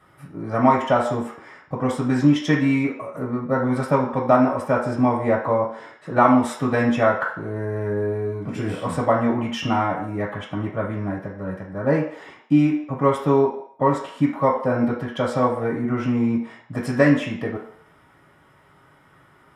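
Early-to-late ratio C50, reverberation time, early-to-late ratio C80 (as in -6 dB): 5.5 dB, 0.60 s, 10.0 dB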